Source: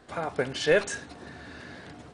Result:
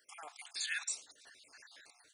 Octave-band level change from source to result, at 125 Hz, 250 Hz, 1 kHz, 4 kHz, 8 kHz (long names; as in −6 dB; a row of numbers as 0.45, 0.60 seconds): below −40 dB, below −35 dB, −17.0 dB, −7.0 dB, −0.5 dB